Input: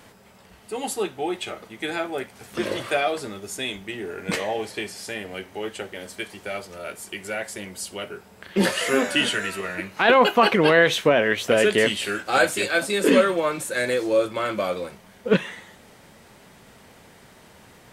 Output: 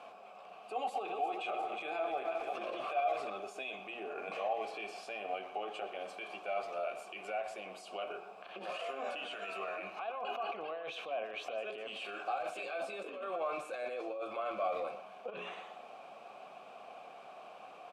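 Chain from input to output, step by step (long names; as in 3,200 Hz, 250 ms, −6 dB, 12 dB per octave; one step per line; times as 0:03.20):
0:00.73–0:03.30: feedback delay that plays each chunk backwards 178 ms, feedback 63%, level −9 dB
high-pass filter 130 Hz 12 dB per octave
mains-hum notches 60/120/180/240/300/360/420 Hz
compressor whose output falls as the input rises −28 dBFS, ratio −1
brickwall limiter −24.5 dBFS, peak gain reduction 13 dB
formant filter a
far-end echo of a speakerphone 120 ms, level −10 dB
level +6 dB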